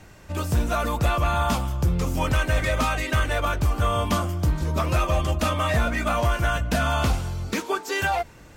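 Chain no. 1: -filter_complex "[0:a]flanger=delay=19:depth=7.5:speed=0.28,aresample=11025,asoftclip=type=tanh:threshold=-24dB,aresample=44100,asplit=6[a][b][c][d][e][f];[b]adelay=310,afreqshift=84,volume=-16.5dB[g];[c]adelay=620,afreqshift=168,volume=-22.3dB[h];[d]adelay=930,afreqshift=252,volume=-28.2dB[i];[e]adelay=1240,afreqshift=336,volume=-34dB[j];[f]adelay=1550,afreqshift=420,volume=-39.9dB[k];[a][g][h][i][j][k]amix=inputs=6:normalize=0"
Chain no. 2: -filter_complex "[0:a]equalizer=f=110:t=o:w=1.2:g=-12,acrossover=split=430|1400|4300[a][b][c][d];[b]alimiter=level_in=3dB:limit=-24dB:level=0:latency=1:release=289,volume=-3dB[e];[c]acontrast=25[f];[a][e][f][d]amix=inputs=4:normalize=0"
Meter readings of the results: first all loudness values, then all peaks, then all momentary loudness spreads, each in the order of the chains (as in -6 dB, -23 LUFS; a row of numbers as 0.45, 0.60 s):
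-30.5, -25.5 LUFS; -21.5, -11.0 dBFS; 3, 6 LU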